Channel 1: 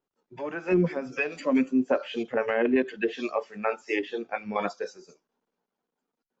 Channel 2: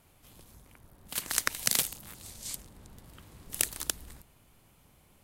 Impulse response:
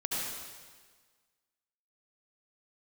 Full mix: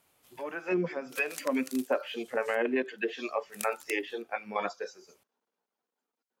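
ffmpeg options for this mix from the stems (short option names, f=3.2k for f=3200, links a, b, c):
-filter_complex "[0:a]volume=-1.5dB,asplit=2[a][b];[1:a]volume=-3.5dB[c];[b]apad=whole_len=230753[d];[c][d]sidechaincompress=threshold=-39dB:ratio=8:attack=36:release=478[e];[a][e]amix=inputs=2:normalize=0,highpass=f=470:p=1"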